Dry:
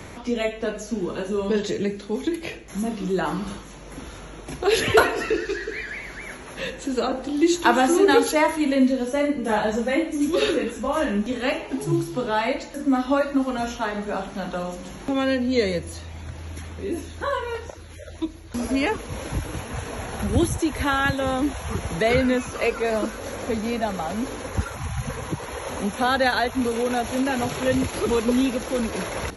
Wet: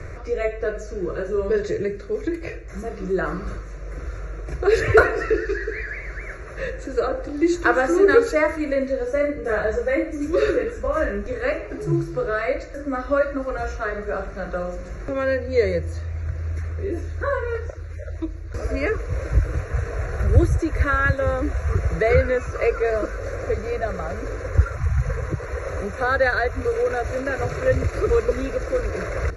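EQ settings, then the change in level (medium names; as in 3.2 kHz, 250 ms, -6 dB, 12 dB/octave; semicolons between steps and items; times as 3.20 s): low-pass 4.6 kHz 12 dB/octave; bass shelf 120 Hz +11.5 dB; static phaser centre 870 Hz, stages 6; +3.0 dB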